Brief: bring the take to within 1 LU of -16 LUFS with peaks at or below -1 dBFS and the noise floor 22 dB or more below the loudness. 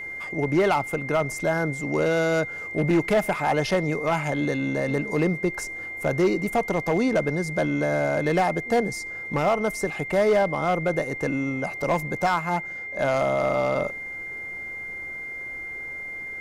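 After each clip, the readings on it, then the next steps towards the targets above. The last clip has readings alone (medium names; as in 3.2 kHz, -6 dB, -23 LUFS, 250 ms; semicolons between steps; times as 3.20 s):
clipped samples 1.1%; clipping level -15.0 dBFS; steady tone 2.1 kHz; tone level -32 dBFS; loudness -25.0 LUFS; peak level -15.0 dBFS; loudness target -16.0 LUFS
-> clip repair -15 dBFS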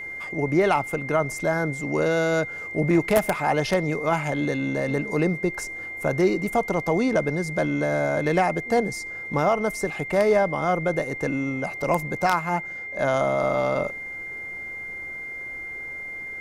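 clipped samples 0.0%; steady tone 2.1 kHz; tone level -32 dBFS
-> band-stop 2.1 kHz, Q 30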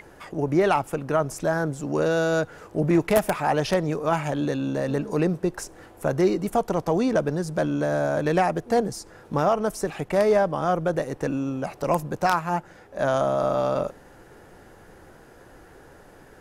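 steady tone not found; loudness -24.5 LUFS; peak level -5.5 dBFS; loudness target -16.0 LUFS
-> trim +8.5 dB; peak limiter -1 dBFS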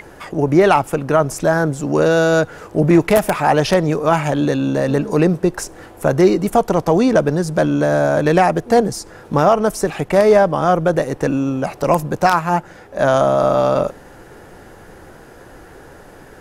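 loudness -16.0 LUFS; peak level -1.0 dBFS; noise floor -41 dBFS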